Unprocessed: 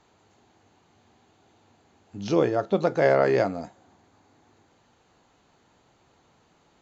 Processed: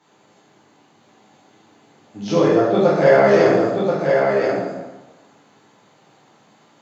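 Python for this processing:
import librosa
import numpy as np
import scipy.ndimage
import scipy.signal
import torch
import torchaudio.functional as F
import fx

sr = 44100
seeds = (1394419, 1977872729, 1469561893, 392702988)

p1 = scipy.signal.sosfilt(scipy.signal.butter(4, 120.0, 'highpass', fs=sr, output='sos'), x)
p2 = p1 + fx.echo_single(p1, sr, ms=1032, db=-4.5, dry=0)
p3 = fx.rev_plate(p2, sr, seeds[0], rt60_s=1.1, hf_ratio=0.75, predelay_ms=0, drr_db=-8.5)
y = p3 * librosa.db_to_amplitude(-1.0)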